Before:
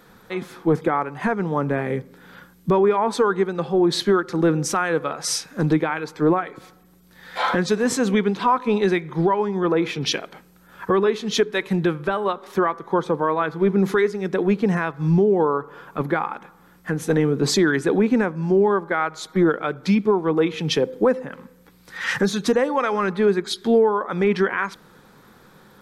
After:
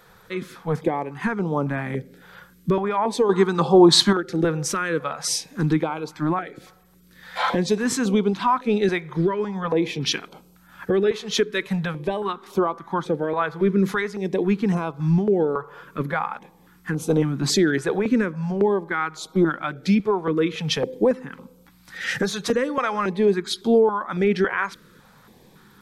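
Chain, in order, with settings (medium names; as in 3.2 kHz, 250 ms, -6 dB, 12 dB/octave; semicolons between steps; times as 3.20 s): 3.29–4.13 s: ten-band graphic EQ 125 Hz +6 dB, 250 Hz +4 dB, 500 Hz +4 dB, 1 kHz +12 dB, 4 kHz +7 dB, 8 kHz +10 dB; step-sequenced notch 3.6 Hz 260–1800 Hz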